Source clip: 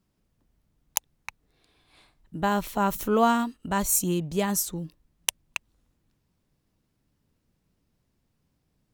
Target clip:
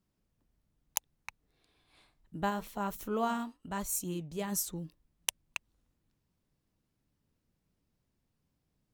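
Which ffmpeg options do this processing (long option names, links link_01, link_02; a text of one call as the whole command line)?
ffmpeg -i in.wav -filter_complex "[0:a]asplit=3[link_01][link_02][link_03];[link_01]afade=type=out:start_time=2.49:duration=0.02[link_04];[link_02]flanger=delay=2.3:depth=7.3:regen=-78:speed=1:shape=triangular,afade=type=in:start_time=2.49:duration=0.02,afade=type=out:start_time=4.51:duration=0.02[link_05];[link_03]afade=type=in:start_time=4.51:duration=0.02[link_06];[link_04][link_05][link_06]amix=inputs=3:normalize=0,volume=-6.5dB" out.wav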